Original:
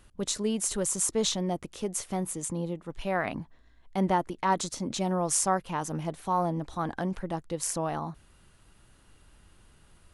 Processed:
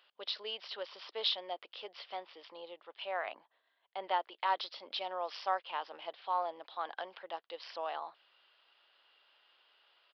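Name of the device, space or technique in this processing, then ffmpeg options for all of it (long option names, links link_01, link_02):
musical greeting card: -filter_complex "[0:a]asettb=1/sr,asplit=3[link_01][link_02][link_03];[link_01]atrim=end=3.054[link_04];[link_02]atrim=start=3.05:end=4.04,asetpts=PTS-STARTPTS,afade=type=in:duration=0.004:curve=qsin,afade=type=out:start_time=0.986:duration=0.004:curve=qsin,highshelf=frequency=2200:gain=-8.5[link_05];[link_03]atrim=start=4.036[link_06];[link_04][link_05]acrossfade=duration=0.004:curve1=hsin:curve2=qsin[link_07];[link_07][link_06]acrossfade=duration=0.004:curve1=qsin:curve2=hsin,aresample=11025,aresample=44100,highpass=frequency=540:width=0.5412,highpass=frequency=540:width=1.3066,equalizer=frequency=3100:width_type=o:width=0.58:gain=9.5,volume=-5.5dB"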